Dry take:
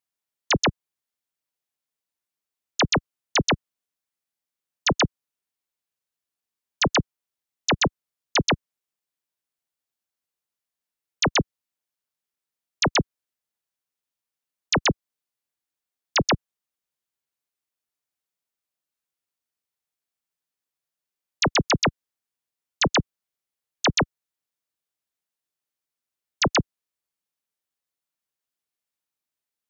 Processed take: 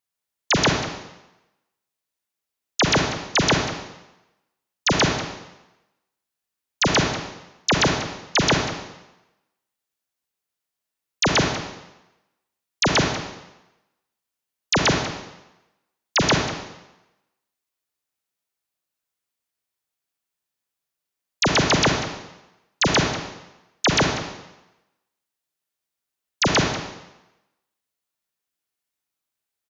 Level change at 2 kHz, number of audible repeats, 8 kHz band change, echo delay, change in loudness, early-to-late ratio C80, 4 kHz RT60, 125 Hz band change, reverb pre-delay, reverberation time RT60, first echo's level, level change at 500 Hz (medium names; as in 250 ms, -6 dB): +4.0 dB, 1, no reading, 191 ms, +2.5 dB, 6.0 dB, 0.90 s, +4.0 dB, 31 ms, 0.95 s, -14.5 dB, +4.0 dB